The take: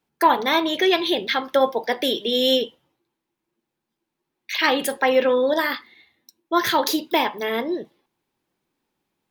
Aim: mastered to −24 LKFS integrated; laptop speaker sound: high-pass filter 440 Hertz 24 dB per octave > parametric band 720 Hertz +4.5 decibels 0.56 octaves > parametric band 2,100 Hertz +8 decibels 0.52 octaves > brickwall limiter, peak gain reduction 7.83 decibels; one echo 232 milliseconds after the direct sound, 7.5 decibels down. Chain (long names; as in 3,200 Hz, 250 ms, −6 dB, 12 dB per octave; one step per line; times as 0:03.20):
high-pass filter 440 Hz 24 dB per octave
parametric band 720 Hz +4.5 dB 0.56 octaves
parametric band 2,100 Hz +8 dB 0.52 octaves
single-tap delay 232 ms −7.5 dB
level −3 dB
brickwall limiter −13.5 dBFS